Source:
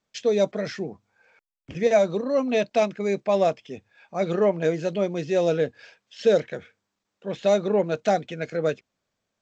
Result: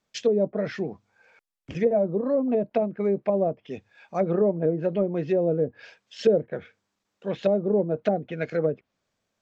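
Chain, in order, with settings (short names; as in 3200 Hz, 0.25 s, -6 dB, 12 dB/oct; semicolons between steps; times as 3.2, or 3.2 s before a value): treble ducked by the level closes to 480 Hz, closed at -19 dBFS; gain +1.5 dB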